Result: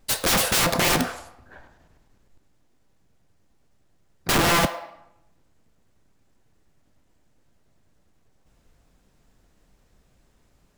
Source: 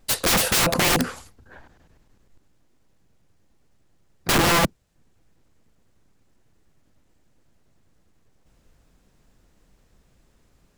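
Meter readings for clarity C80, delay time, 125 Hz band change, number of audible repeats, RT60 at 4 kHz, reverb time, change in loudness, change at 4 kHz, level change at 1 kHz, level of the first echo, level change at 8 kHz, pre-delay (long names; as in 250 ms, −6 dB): 13.0 dB, no echo audible, −1.5 dB, no echo audible, 0.60 s, 0.85 s, −1.0 dB, −1.0 dB, −0.5 dB, no echo audible, −1.0 dB, 5 ms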